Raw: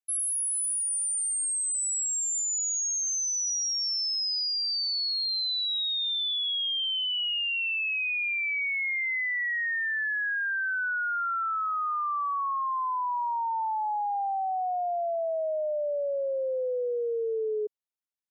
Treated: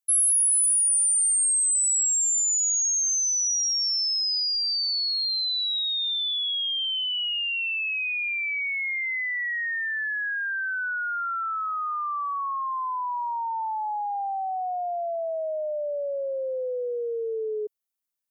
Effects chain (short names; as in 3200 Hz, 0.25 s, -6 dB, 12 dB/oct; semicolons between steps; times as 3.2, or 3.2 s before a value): high shelf 7300 Hz +11.5 dB